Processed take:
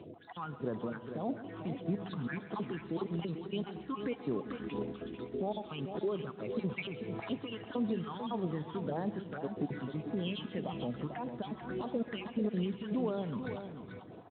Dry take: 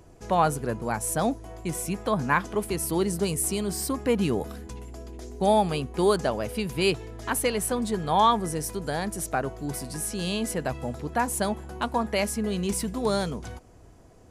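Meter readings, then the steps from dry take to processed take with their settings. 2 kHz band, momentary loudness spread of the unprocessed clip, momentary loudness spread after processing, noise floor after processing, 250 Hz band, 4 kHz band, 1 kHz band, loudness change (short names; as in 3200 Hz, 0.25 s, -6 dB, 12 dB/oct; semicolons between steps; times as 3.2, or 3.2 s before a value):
-13.5 dB, 10 LU, 6 LU, -50 dBFS, -7.0 dB, -13.5 dB, -16.5 dB, -11.0 dB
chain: random spectral dropouts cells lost 27%; HPF 160 Hz 12 dB/oct; compressor 6:1, threshold -38 dBFS, peak gain reduction 19.5 dB; limiter -33.5 dBFS, peak gain reduction 9.5 dB; phaser stages 8, 1.7 Hz, lowest notch 580–2900 Hz; tapped delay 0.135/0.444 s -15/-8 dB; Schroeder reverb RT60 3 s, combs from 32 ms, DRR 15 dB; gain +7.5 dB; Speex 18 kbps 8000 Hz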